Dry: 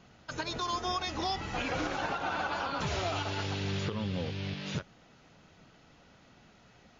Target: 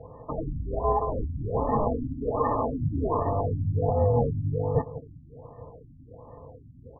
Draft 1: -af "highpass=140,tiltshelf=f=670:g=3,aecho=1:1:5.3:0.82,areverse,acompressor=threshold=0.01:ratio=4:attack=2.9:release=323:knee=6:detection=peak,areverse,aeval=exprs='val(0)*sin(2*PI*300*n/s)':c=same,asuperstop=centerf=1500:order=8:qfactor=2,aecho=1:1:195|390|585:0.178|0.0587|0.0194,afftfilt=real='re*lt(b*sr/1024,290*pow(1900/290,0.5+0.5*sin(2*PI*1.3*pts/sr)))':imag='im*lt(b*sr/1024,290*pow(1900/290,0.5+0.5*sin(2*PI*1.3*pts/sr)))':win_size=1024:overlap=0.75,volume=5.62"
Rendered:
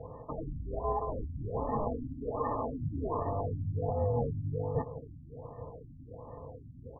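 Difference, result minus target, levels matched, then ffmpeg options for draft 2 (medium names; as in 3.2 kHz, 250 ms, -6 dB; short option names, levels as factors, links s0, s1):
compression: peak gain reduction +8 dB
-af "highpass=140,tiltshelf=f=670:g=3,aecho=1:1:5.3:0.82,areverse,acompressor=threshold=0.0335:ratio=4:attack=2.9:release=323:knee=6:detection=peak,areverse,aeval=exprs='val(0)*sin(2*PI*300*n/s)':c=same,asuperstop=centerf=1500:order=8:qfactor=2,aecho=1:1:195|390|585:0.178|0.0587|0.0194,afftfilt=real='re*lt(b*sr/1024,290*pow(1900/290,0.5+0.5*sin(2*PI*1.3*pts/sr)))':imag='im*lt(b*sr/1024,290*pow(1900/290,0.5+0.5*sin(2*PI*1.3*pts/sr)))':win_size=1024:overlap=0.75,volume=5.62"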